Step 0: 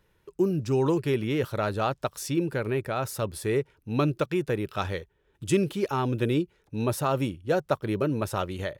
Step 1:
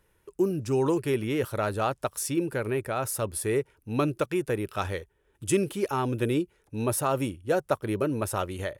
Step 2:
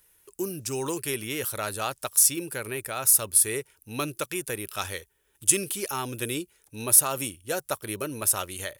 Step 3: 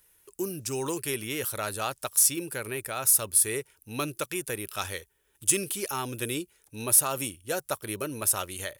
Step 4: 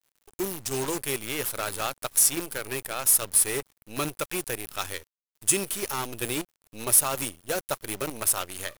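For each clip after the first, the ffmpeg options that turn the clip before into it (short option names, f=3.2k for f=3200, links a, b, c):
-af "equalizer=f=160:t=o:w=0.67:g=-5,equalizer=f=4k:t=o:w=0.67:g=-4,equalizer=f=10k:t=o:w=0.67:g=9"
-af "crystalizer=i=9:c=0,volume=-7.5dB"
-af "acontrast=84,volume=-8dB"
-af "acrusher=bits=6:dc=4:mix=0:aa=0.000001,volume=1dB"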